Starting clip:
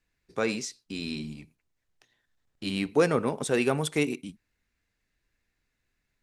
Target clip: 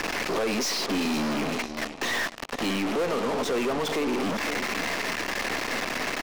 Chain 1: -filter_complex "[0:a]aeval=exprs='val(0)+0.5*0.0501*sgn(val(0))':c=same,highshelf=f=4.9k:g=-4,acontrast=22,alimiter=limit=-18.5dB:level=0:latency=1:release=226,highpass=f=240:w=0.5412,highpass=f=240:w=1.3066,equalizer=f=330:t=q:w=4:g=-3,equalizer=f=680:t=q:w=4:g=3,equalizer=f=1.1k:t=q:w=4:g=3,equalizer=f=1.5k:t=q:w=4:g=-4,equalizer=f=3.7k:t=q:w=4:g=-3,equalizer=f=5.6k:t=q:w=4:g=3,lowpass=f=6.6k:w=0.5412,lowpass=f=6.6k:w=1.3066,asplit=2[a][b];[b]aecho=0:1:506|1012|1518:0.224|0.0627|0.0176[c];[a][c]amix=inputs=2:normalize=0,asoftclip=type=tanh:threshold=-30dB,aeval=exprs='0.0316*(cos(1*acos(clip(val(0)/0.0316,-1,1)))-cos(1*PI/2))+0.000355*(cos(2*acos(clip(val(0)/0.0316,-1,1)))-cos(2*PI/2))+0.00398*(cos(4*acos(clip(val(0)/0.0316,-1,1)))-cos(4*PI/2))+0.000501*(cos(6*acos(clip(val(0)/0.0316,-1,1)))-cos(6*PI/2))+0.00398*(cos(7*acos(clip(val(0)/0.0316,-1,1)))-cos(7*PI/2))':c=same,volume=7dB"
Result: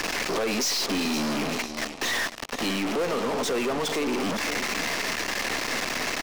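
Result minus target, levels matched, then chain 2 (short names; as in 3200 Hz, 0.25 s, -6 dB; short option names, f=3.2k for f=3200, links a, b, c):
8000 Hz band +3.5 dB
-filter_complex "[0:a]aeval=exprs='val(0)+0.5*0.0501*sgn(val(0))':c=same,highshelf=f=4.9k:g=-15.5,acontrast=22,alimiter=limit=-18.5dB:level=0:latency=1:release=226,highpass=f=240:w=0.5412,highpass=f=240:w=1.3066,equalizer=f=330:t=q:w=4:g=-3,equalizer=f=680:t=q:w=4:g=3,equalizer=f=1.1k:t=q:w=4:g=3,equalizer=f=1.5k:t=q:w=4:g=-4,equalizer=f=3.7k:t=q:w=4:g=-3,equalizer=f=5.6k:t=q:w=4:g=3,lowpass=f=6.6k:w=0.5412,lowpass=f=6.6k:w=1.3066,asplit=2[a][b];[b]aecho=0:1:506|1012|1518:0.224|0.0627|0.0176[c];[a][c]amix=inputs=2:normalize=0,asoftclip=type=tanh:threshold=-30dB,aeval=exprs='0.0316*(cos(1*acos(clip(val(0)/0.0316,-1,1)))-cos(1*PI/2))+0.000355*(cos(2*acos(clip(val(0)/0.0316,-1,1)))-cos(2*PI/2))+0.00398*(cos(4*acos(clip(val(0)/0.0316,-1,1)))-cos(4*PI/2))+0.000501*(cos(6*acos(clip(val(0)/0.0316,-1,1)))-cos(6*PI/2))+0.00398*(cos(7*acos(clip(val(0)/0.0316,-1,1)))-cos(7*PI/2))':c=same,volume=7dB"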